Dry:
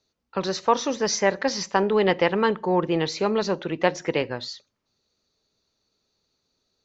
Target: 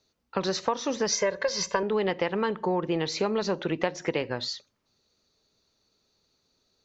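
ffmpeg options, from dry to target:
-filter_complex "[0:a]asettb=1/sr,asplit=3[s0][s1][s2];[s0]atrim=end=1.124[s3];[s1]atrim=start=1.12:end=1.83,asetpts=PTS-STARTPTS,afade=t=in:d=0.004:c=qsin,afade=t=out:st=0.706:d=0.004:c=qsin,aecho=1:1:1.9:0.92,atrim=end_sample=31311[s4];[s2]atrim=start=1.826[s5];[s3][s4]acrossfade=d=0.004:c1=hsin:c2=qsin[s6];[s6][s5]acrossfade=d=0.004:c1=qsin:c2=hsin,acompressor=threshold=0.0501:ratio=6,volume=1.33"

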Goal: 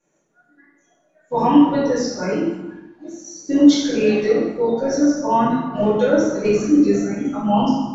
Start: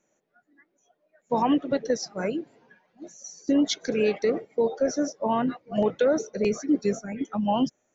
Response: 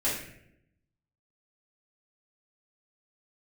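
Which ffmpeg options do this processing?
-filter_complex "[1:a]atrim=start_sample=2205,afade=t=out:st=0.37:d=0.01,atrim=end_sample=16758,asetrate=24255,aresample=44100[s0];[0:a][s0]afir=irnorm=-1:irlink=0,volume=0.473"

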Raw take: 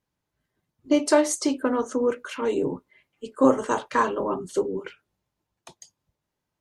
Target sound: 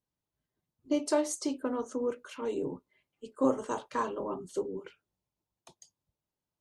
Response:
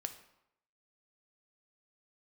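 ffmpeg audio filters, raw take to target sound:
-af "equalizer=f=1800:t=o:w=0.96:g=-5.5,volume=0.376"

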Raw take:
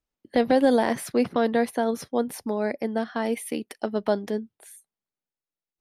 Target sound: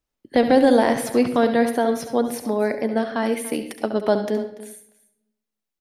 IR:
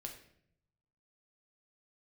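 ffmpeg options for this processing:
-filter_complex "[0:a]aecho=1:1:288:0.126,asplit=2[s0][s1];[1:a]atrim=start_sample=2205,adelay=69[s2];[s1][s2]afir=irnorm=-1:irlink=0,volume=0.562[s3];[s0][s3]amix=inputs=2:normalize=0,volume=1.58"

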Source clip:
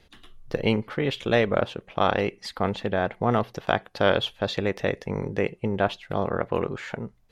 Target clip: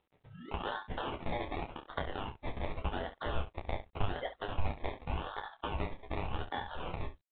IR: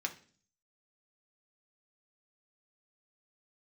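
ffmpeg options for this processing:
-filter_complex "[0:a]agate=range=0.0282:threshold=0.00501:ratio=16:detection=peak,lowshelf=f=370:g=-10,aeval=exprs='val(0)*sin(2*PI*1300*n/s)':c=same,asplit=2[s0][s1];[s1]alimiter=limit=0.106:level=0:latency=1:release=17,volume=0.944[s2];[s0][s2]amix=inputs=2:normalize=0,acompressor=threshold=0.0126:ratio=5,afftdn=nr=13:nf=-49,acrusher=samples=24:mix=1:aa=0.000001:lfo=1:lforange=14.4:lforate=0.87,acompressor=mode=upward:threshold=0.00112:ratio=2.5,asplit=2[s3][s4];[s4]aecho=0:1:12|29|69:0.631|0.473|0.282[s5];[s3][s5]amix=inputs=2:normalize=0,asubboost=boost=5.5:cutoff=90,volume=1.12" -ar 8000 -c:a adpcm_g726 -b:a 40k

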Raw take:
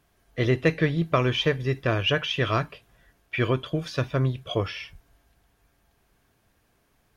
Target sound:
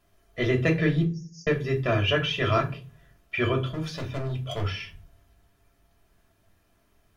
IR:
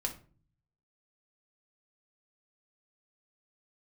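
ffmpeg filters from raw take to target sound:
-filter_complex "[0:a]asettb=1/sr,asplit=3[s0][s1][s2];[s0]atrim=end=1.044[s3];[s1]atrim=start=1.04:end=1.47,asetpts=PTS-STARTPTS,afade=t=in:d=0.004:c=qsin,afade=t=out:st=0.426:d=0.004:c=qsin,asuperpass=centerf=5900:order=20:qfactor=2.3[s4];[s2]atrim=start=1.466[s5];[s3][s4]acrossfade=d=0.004:c1=hsin:c2=qsin[s6];[s6][s5]acrossfade=d=0.004:c1=qsin:c2=hsin,asettb=1/sr,asplit=3[s7][s8][s9];[s7]atrim=end=3.694[s10];[s8]atrim=start=3.69:end=4.68,asetpts=PTS-STARTPTS,afade=t=in:d=0.004:c=qsin,afade=t=out:st=0.986:d=0.004:c=qsin,volume=23.7,asoftclip=hard,volume=0.0422[s11];[s9]atrim=start=4.676[s12];[s10][s11]acrossfade=d=0.004:c1=hsin:c2=qsin[s13];[s13][s12]acrossfade=d=0.004:c1=qsin:c2=hsin[s14];[1:a]atrim=start_sample=2205,asetrate=57330,aresample=44100[s15];[s14][s15]afir=irnorm=-1:irlink=0"

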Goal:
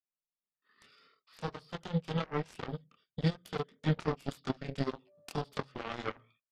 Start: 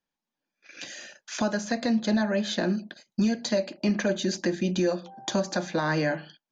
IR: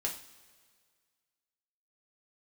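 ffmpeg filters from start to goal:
-af "flanger=delay=19:depth=4.1:speed=0.77,asetrate=33038,aresample=44100,atempo=1.33484,aeval=exprs='0.15*(cos(1*acos(clip(val(0)/0.15,-1,1)))-cos(1*PI/2))+0.0473*(cos(3*acos(clip(val(0)/0.15,-1,1)))-cos(3*PI/2))+0.00106*(cos(5*acos(clip(val(0)/0.15,-1,1)))-cos(5*PI/2))+0.00473*(cos(7*acos(clip(val(0)/0.15,-1,1)))-cos(7*PI/2))':c=same"

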